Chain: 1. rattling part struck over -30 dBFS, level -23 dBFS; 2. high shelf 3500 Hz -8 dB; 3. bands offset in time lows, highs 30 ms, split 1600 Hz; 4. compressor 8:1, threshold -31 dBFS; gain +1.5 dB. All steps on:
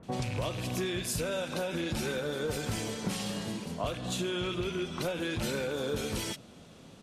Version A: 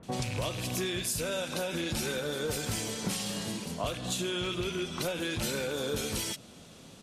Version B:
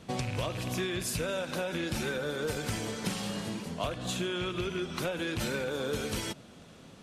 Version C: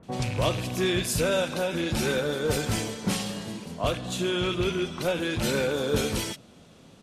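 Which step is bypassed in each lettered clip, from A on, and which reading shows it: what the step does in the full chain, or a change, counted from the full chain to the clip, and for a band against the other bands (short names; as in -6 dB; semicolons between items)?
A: 2, 8 kHz band +5.0 dB; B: 3, 2 kHz band +2.0 dB; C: 4, mean gain reduction 4.5 dB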